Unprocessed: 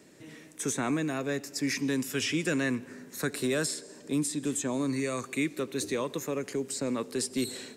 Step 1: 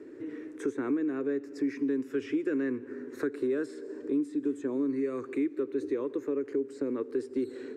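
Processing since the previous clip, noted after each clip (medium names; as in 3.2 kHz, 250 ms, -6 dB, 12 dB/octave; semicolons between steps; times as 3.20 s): FFT filter 120 Hz 0 dB, 180 Hz -13 dB, 280 Hz +13 dB, 430 Hz +14 dB, 660 Hz -4 dB, 1.5 kHz +4 dB, 3.1 kHz -10 dB, 12 kHz -21 dB; compression 2:1, threshold -36 dBFS, peak gain reduction 13 dB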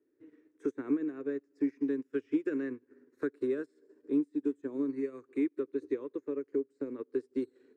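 upward expansion 2.5:1, over -45 dBFS; trim +1.5 dB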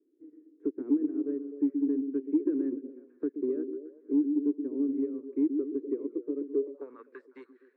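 repeats whose band climbs or falls 125 ms, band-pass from 260 Hz, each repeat 0.7 oct, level -6 dB; saturation -20.5 dBFS, distortion -22 dB; band-pass sweep 310 Hz -> 1.7 kHz, 6.52–7.08 s; trim +5 dB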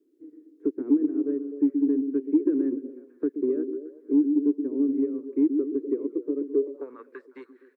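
echo from a far wall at 36 m, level -28 dB; trim +5 dB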